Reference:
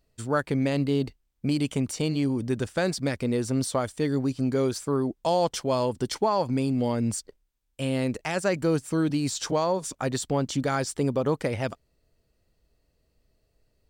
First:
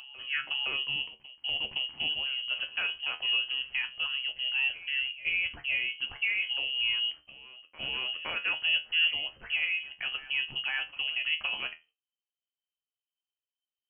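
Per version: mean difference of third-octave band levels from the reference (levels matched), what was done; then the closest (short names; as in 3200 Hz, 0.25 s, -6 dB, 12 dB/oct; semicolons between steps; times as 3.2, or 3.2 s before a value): 18.0 dB: gate -54 dBFS, range -26 dB; resonator 80 Hz, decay 0.23 s, harmonics all, mix 80%; on a send: reverse echo 0.515 s -16.5 dB; on the sum: inverted band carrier 3100 Hz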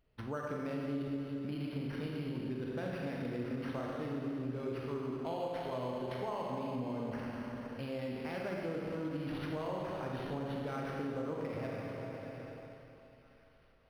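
9.0 dB: Schroeder reverb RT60 2.7 s, combs from 32 ms, DRR -3 dB; compressor 2.5:1, threshold -37 dBFS, peak gain reduction 14.5 dB; on a send: thinning echo 0.841 s, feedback 70%, high-pass 810 Hz, level -19 dB; on the sum: decimation joined by straight lines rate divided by 6×; gain -4.5 dB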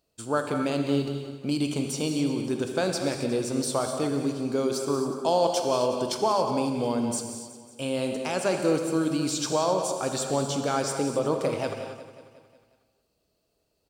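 7.0 dB: HPF 310 Hz 6 dB/oct; bell 1900 Hz -11 dB 0.38 oct; on a send: feedback echo 0.181 s, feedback 58%, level -13.5 dB; on the sum: non-linear reverb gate 0.3 s flat, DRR 4 dB; gain +1 dB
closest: third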